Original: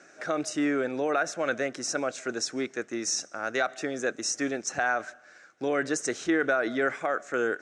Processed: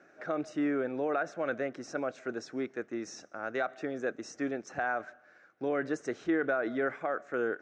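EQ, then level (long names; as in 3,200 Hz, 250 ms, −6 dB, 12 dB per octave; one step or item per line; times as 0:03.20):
low-pass filter 1,500 Hz 6 dB per octave
high-frequency loss of the air 57 metres
−3.0 dB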